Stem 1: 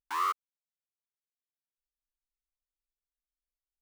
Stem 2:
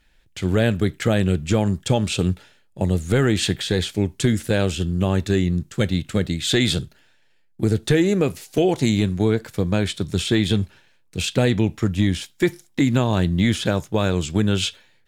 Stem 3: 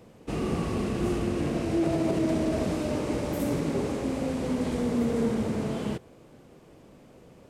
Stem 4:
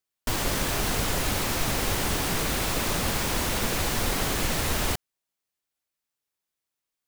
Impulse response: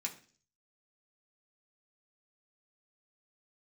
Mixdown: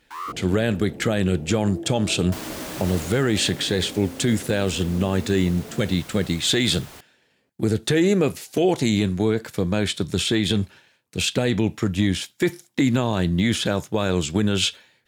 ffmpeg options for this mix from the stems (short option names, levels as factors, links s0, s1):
-filter_complex "[0:a]acontrast=33,volume=0.398[s0];[1:a]volume=1.33[s1];[2:a]afwtdn=0.0316,acompressor=threshold=0.0158:ratio=2.5,flanger=delay=16:depth=6.2:speed=0.37,volume=1.33[s2];[3:a]adelay=2050,volume=0.473,afade=t=out:st=3.02:d=0.22:silence=0.354813[s3];[s0][s1][s2][s3]amix=inputs=4:normalize=0,highpass=f=140:p=1,alimiter=limit=0.316:level=0:latency=1:release=28"